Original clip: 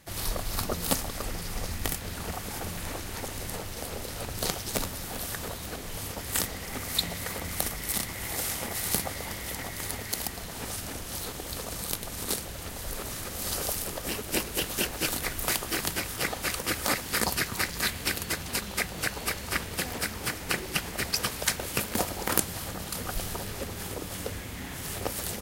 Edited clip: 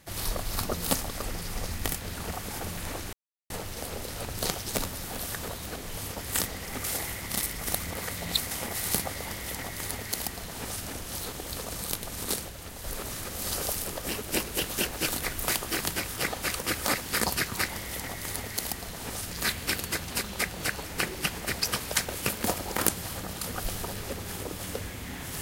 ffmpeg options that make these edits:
-filter_complex "[0:a]asplit=10[s0][s1][s2][s3][s4][s5][s6][s7][s8][s9];[s0]atrim=end=3.13,asetpts=PTS-STARTPTS,afade=t=out:st=3.126:d=0.004:c=hsin[s10];[s1]atrim=start=3.13:end=3.5,asetpts=PTS-STARTPTS,volume=0[s11];[s2]atrim=start=3.5:end=6.842,asetpts=PTS-STARTPTS,afade=t=in:d=0.004:c=hsin[s12];[s3]atrim=start=6.838:end=8.512,asetpts=PTS-STARTPTS,areverse[s13];[s4]atrim=start=8.508:end=12.492[s14];[s5]atrim=start=12.488:end=12.842,asetpts=PTS-STARTPTS,volume=0.668[s15];[s6]atrim=start=12.838:end=17.692[s16];[s7]atrim=start=9.238:end=10.862[s17];[s8]atrim=start=17.688:end=19.222[s18];[s9]atrim=start=20.348[s19];[s10][s11][s12]concat=n=3:v=0:a=1[s20];[s20][s13]acrossfade=d=0.004:c1=hsin:c2=hsin[s21];[s21][s14]acrossfade=d=0.004:c1=hsin:c2=hsin[s22];[s22][s15]acrossfade=d=0.004:c1=hsin:c2=hsin[s23];[s23][s16]acrossfade=d=0.004:c1=hsin:c2=hsin[s24];[s24][s17]acrossfade=d=0.004:c1=hsin:c2=hsin[s25];[s25][s18]acrossfade=d=0.004:c1=hsin:c2=hsin[s26];[s26][s19]acrossfade=d=0.004:c1=hsin:c2=hsin"

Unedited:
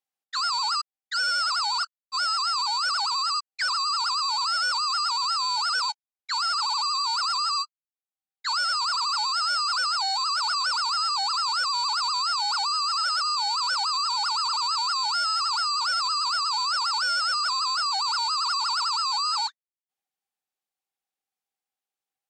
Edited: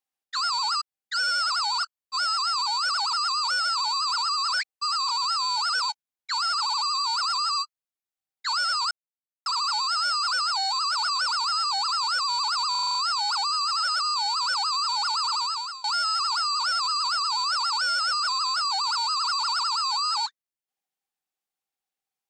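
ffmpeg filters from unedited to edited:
-filter_complex "[0:a]asplit=11[s0][s1][s2][s3][s4][s5][s6][s7][s8][s9][s10];[s0]atrim=end=3.132[s11];[s1]atrim=start=3.128:end=5.092,asetpts=PTS-STARTPTS,areverse[s12];[s2]atrim=start=5.088:end=8.91,asetpts=PTS-STARTPTS,afade=t=out:st=3.818:d=0.004:c=hsin,apad=pad_dur=0.55[s13];[s3]atrim=start=8.91:end=12.202,asetpts=PTS-STARTPTS,afade=t=in:d=0.004:c=hsin[s14];[s4]atrim=start=12.158:end=12.202[s15];[s5]atrim=start=12.158:end=12.202[s16];[s6]atrim=start=12.158:end=12.202[s17];[s7]atrim=start=12.158:end=12.202[s18];[s8]atrim=start=12.158:end=12.202[s19];[s9]atrim=start=12.158:end=15.05,asetpts=PTS-STARTPTS,afade=t=out:st=2.432:d=0.46:silence=0.0841395[s20];[s10]atrim=start=15.05,asetpts=PTS-STARTPTS,afade=t=in:d=0.004:c=hsin:silence=0.0841395[s21];[s11][s12]acrossfade=d=0.004:c1=hsin:c2=hsin[s22];[s13][s14]concat=n=2:v=0:a=1[s23];[s22][s23]acrossfade=d=0.004:c1=hsin:c2=hsin[s24];[s24][s15]acrossfade=d=0.004:c1=hsin:c2=hsin[s25];[s25][s16]acrossfade=d=0.004:c1=hsin:c2=hsin[s26];[s26][s17]acrossfade=d=0.004:c1=hsin:c2=hsin[s27];[s27][s18]acrossfade=d=0.004:c1=hsin:c2=hsin[s28];[s28][s19]acrossfade=d=0.004:c1=hsin:c2=hsin[s29];[s20][s21]concat=n=2:v=0:a=1[s30];[s29][s30]acrossfade=d=0.004:c1=hsin:c2=hsin"

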